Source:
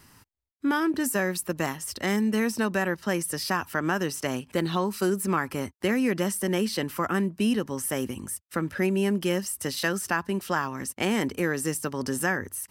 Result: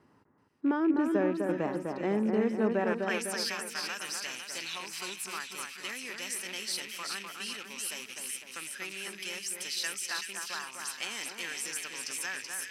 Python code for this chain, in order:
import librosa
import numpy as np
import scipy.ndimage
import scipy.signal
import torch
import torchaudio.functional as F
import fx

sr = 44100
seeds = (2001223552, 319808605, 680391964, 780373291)

y = fx.rattle_buzz(x, sr, strikes_db=-33.0, level_db=-26.0)
y = fx.filter_sweep_bandpass(y, sr, from_hz=430.0, to_hz=5300.0, start_s=2.78, end_s=3.28, q=1.0)
y = fx.echo_split(y, sr, split_hz=1900.0, low_ms=252, high_ms=379, feedback_pct=52, wet_db=-4.0)